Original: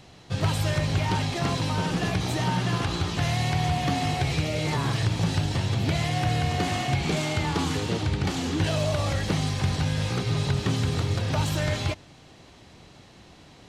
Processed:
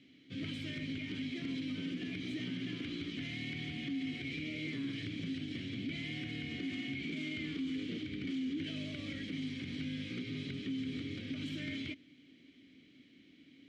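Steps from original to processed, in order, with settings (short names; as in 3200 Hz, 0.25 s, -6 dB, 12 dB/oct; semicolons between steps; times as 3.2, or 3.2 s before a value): vowel filter i; limiter -33 dBFS, peak gain reduction 8 dB; gain +2 dB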